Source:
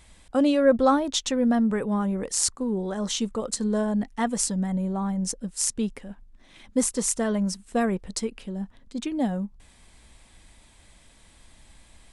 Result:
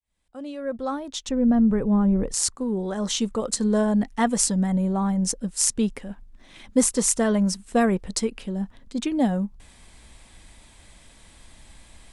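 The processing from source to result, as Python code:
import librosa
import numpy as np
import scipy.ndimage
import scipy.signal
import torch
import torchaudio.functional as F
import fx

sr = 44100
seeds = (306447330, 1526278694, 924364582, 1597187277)

y = fx.fade_in_head(x, sr, length_s=3.87)
y = fx.tilt_eq(y, sr, slope=-3.5, at=(1.29, 2.34))
y = F.gain(torch.from_numpy(y), 4.0).numpy()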